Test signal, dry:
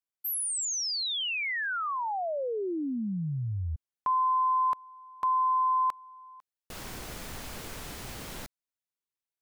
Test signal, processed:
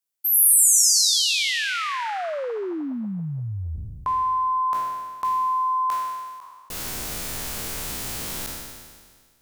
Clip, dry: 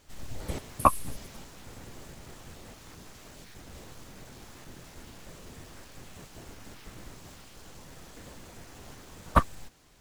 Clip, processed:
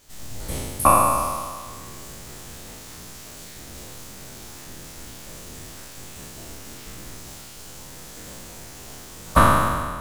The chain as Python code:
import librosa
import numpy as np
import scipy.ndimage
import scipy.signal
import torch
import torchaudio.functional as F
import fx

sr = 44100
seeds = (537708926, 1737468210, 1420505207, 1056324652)

p1 = fx.spec_trails(x, sr, decay_s=1.71)
p2 = fx.high_shelf(p1, sr, hz=4600.0, db=10.0)
p3 = fx.rider(p2, sr, range_db=3, speed_s=2.0)
p4 = p2 + (p3 * librosa.db_to_amplitude(2.0))
y = p4 * librosa.db_to_amplitude(-6.5)